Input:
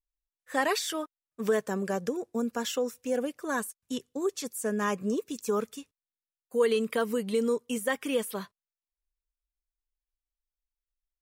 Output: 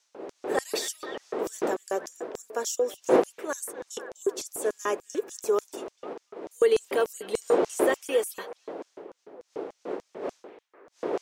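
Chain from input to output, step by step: wind noise 380 Hz -30 dBFS; low shelf 220 Hz -11 dB; delay with a stepping band-pass 0.246 s, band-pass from 2600 Hz, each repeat -0.7 oct, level -9.5 dB; LFO high-pass square 3.4 Hz 410–6200 Hz

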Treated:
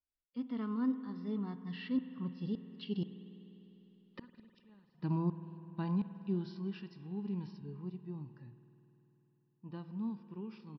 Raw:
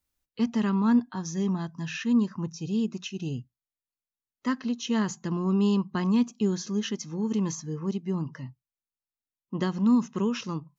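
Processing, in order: Doppler pass-by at 3.77, 26 m/s, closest 7.2 m; flipped gate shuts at -33 dBFS, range -35 dB; downsampling 11025 Hz; harmonic-percussive split percussive -9 dB; reverb RT60 3.6 s, pre-delay 50 ms, DRR 11.5 dB; gain +9.5 dB

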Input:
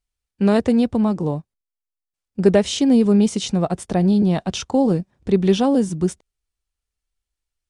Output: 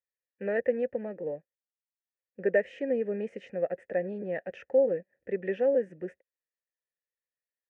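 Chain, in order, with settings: vowel filter e; resonant high shelf 2700 Hz -12 dB, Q 3

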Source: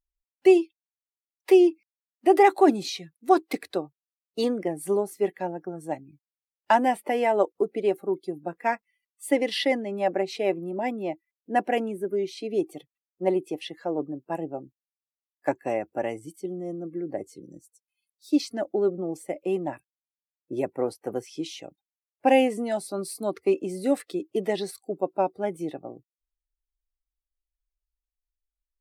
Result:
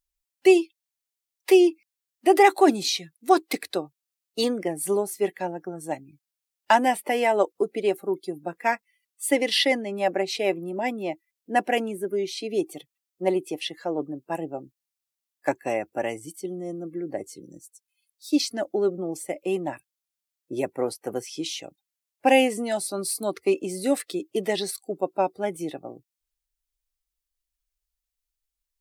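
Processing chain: high shelf 2100 Hz +9.5 dB

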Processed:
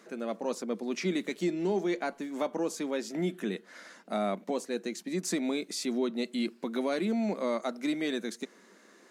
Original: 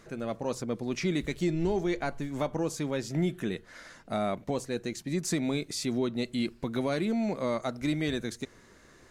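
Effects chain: elliptic high-pass 190 Hz, stop band 40 dB

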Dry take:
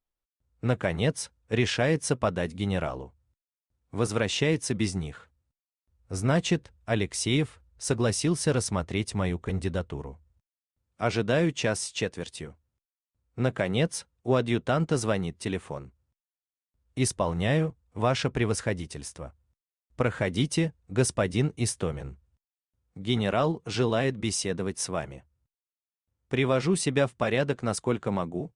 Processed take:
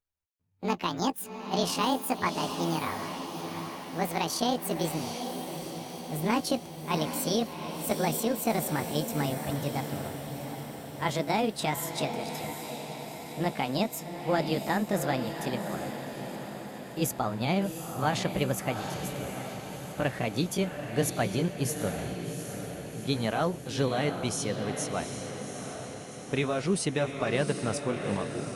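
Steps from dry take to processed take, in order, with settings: gliding pitch shift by +10 st ending unshifted; diffused feedback echo 0.765 s, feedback 59%, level -7 dB; gain -2 dB

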